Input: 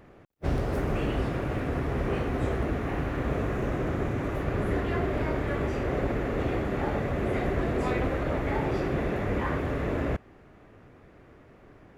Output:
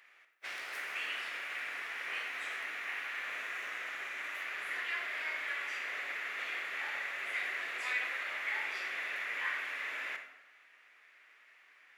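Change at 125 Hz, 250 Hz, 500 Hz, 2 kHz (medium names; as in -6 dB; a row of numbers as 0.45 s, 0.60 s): under -40 dB, -34.0 dB, -24.0 dB, +3.5 dB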